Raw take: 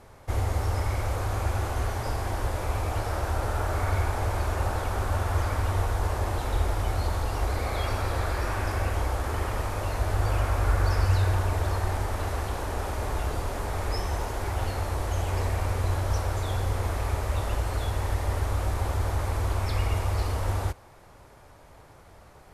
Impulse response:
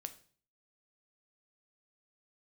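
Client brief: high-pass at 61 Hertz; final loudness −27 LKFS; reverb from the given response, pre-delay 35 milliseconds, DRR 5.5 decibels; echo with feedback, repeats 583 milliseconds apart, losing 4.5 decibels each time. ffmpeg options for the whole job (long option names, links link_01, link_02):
-filter_complex "[0:a]highpass=61,aecho=1:1:583|1166|1749|2332|2915|3498|4081|4664|5247:0.596|0.357|0.214|0.129|0.0772|0.0463|0.0278|0.0167|0.01,asplit=2[link_01][link_02];[1:a]atrim=start_sample=2205,adelay=35[link_03];[link_02][link_03]afir=irnorm=-1:irlink=0,volume=-2dB[link_04];[link_01][link_04]amix=inputs=2:normalize=0"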